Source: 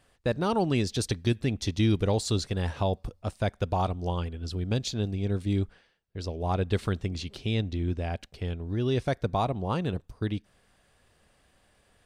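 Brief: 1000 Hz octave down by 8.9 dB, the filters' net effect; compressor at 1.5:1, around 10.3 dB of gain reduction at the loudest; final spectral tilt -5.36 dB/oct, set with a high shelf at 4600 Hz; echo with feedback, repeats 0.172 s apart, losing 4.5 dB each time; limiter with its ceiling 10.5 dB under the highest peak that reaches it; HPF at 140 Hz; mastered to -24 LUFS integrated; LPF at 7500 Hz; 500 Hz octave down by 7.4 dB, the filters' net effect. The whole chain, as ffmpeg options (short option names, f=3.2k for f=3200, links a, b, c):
-af "highpass=140,lowpass=7.5k,equalizer=f=500:t=o:g=-7.5,equalizer=f=1k:t=o:g=-9,highshelf=f=4.6k:g=-3,acompressor=threshold=-54dB:ratio=1.5,alimiter=level_in=11.5dB:limit=-24dB:level=0:latency=1,volume=-11.5dB,aecho=1:1:172|344|516|688|860|1032|1204|1376|1548:0.596|0.357|0.214|0.129|0.0772|0.0463|0.0278|0.0167|0.01,volume=21.5dB"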